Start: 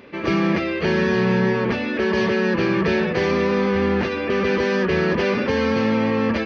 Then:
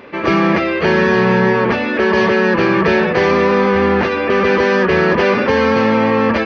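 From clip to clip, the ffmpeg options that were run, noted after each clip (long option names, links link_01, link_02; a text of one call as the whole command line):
ffmpeg -i in.wav -af "equalizer=frequency=990:width_type=o:width=2.4:gain=7.5,volume=3dB" out.wav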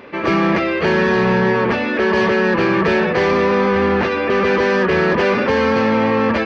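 ffmpeg -i in.wav -af "asoftclip=type=tanh:threshold=-6dB,volume=-1dB" out.wav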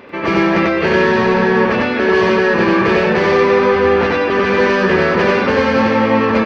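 ffmpeg -i in.wav -af "aecho=1:1:93.29|207:0.891|0.251" out.wav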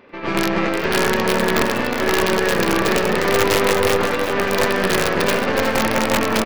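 ffmpeg -i in.wav -filter_complex "[0:a]aeval=exprs='(mod(1.78*val(0)+1,2)-1)/1.78':channel_layout=same,asplit=7[link_01][link_02][link_03][link_04][link_05][link_06][link_07];[link_02]adelay=364,afreqshift=86,volume=-8.5dB[link_08];[link_03]adelay=728,afreqshift=172,volume=-14dB[link_09];[link_04]adelay=1092,afreqshift=258,volume=-19.5dB[link_10];[link_05]adelay=1456,afreqshift=344,volume=-25dB[link_11];[link_06]adelay=1820,afreqshift=430,volume=-30.6dB[link_12];[link_07]adelay=2184,afreqshift=516,volume=-36.1dB[link_13];[link_01][link_08][link_09][link_10][link_11][link_12][link_13]amix=inputs=7:normalize=0,aeval=exprs='1*(cos(1*acos(clip(val(0)/1,-1,1)))-cos(1*PI/2))+0.1*(cos(6*acos(clip(val(0)/1,-1,1)))-cos(6*PI/2))+0.0562*(cos(7*acos(clip(val(0)/1,-1,1)))-cos(7*PI/2))':channel_layout=same,volume=-5.5dB" out.wav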